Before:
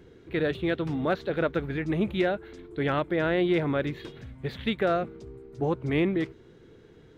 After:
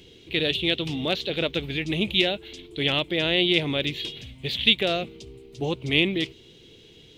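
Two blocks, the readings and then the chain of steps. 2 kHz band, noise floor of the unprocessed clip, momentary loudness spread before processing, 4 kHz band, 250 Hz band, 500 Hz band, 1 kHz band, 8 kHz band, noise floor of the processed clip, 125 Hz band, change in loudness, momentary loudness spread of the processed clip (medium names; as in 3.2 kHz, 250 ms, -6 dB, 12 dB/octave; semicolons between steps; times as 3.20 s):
+6.0 dB, -54 dBFS, 13 LU, +18.5 dB, 0.0 dB, -0.5 dB, -3.0 dB, no reading, -51 dBFS, 0.0 dB, +4.0 dB, 12 LU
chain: resonant high shelf 2.1 kHz +12 dB, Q 3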